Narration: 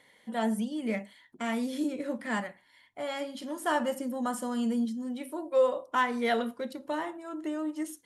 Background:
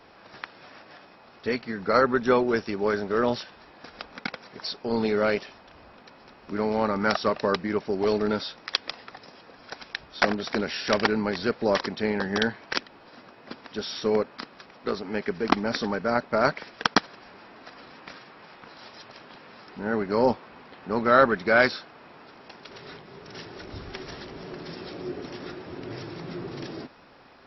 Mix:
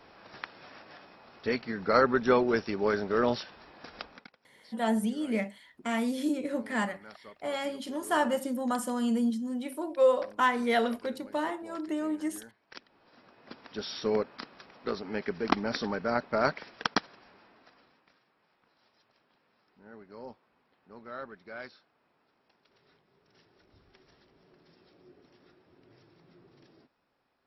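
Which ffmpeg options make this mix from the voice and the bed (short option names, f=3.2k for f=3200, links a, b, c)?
-filter_complex "[0:a]adelay=4450,volume=1.5dB[a];[1:a]volume=19dB,afade=t=out:st=4.01:d=0.27:silence=0.0668344,afade=t=in:st=12.64:d=1.21:silence=0.0841395,afade=t=out:st=16.48:d=1.59:silence=0.112202[b];[a][b]amix=inputs=2:normalize=0"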